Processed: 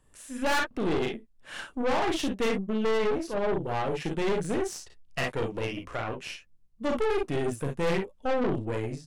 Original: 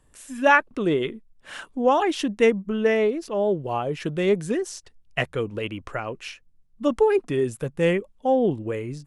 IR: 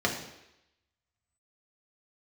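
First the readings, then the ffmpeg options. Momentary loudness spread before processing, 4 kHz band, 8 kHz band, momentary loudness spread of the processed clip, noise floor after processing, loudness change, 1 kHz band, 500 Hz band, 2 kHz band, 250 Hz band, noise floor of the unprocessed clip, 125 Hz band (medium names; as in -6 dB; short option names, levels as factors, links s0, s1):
13 LU, -1.5 dB, -1.0 dB, 11 LU, -60 dBFS, -6.0 dB, -6.0 dB, -6.5 dB, -6.5 dB, -5.0 dB, -59 dBFS, -3.5 dB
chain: -af "aecho=1:1:36|52|64:0.501|0.473|0.282,aeval=exprs='(tanh(15.8*val(0)+0.7)-tanh(0.7))/15.8':c=same"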